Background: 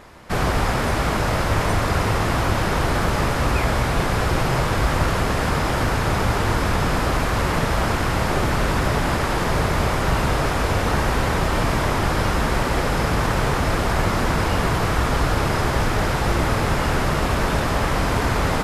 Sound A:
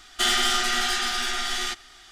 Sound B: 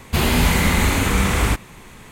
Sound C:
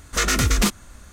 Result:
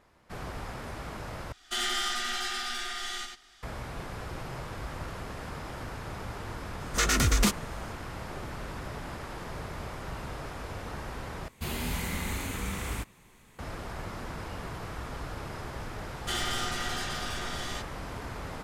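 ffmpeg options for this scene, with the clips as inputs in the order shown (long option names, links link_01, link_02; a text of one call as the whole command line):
ffmpeg -i bed.wav -i cue0.wav -i cue1.wav -i cue2.wav -filter_complex "[1:a]asplit=2[link_01][link_02];[0:a]volume=-18.5dB[link_03];[link_01]aecho=1:1:91:0.531[link_04];[2:a]highshelf=frequency=6800:gain=4.5[link_05];[link_02]equalizer=frequency=4000:width=0.33:gain=-4.5[link_06];[link_03]asplit=3[link_07][link_08][link_09];[link_07]atrim=end=1.524[link_10];[link_04]atrim=end=2.11,asetpts=PTS-STARTPTS,volume=-9.5dB[link_11];[link_08]atrim=start=3.626:end=11.484[link_12];[link_05]atrim=end=2.11,asetpts=PTS-STARTPTS,volume=-16.5dB[link_13];[link_09]atrim=start=13.586[link_14];[3:a]atrim=end=1.12,asetpts=PTS-STARTPTS,volume=-5dB,afade=type=in:duration=0.004:curve=hsin,afade=type=out:start_time=1.116:duration=0.004:curve=hsin,adelay=6810[link_15];[link_06]atrim=end=2.11,asetpts=PTS-STARTPTS,volume=-7dB,afade=type=in:duration=0.004:curve=hsin,afade=type=out:start_time=2.106:duration=0.004:curve=hsin,adelay=16080[link_16];[link_10][link_11]acrossfade=duration=0.004:curve1=hsin:curve2=hsin[link_17];[link_17][link_12]acrossfade=duration=0.004:curve1=hsin:curve2=hsin[link_18];[link_18][link_13]acrossfade=duration=0.004:curve1=hsin:curve2=hsin[link_19];[link_19][link_14]acrossfade=duration=0.004:curve1=hsin:curve2=hsin[link_20];[link_20][link_15][link_16]amix=inputs=3:normalize=0" out.wav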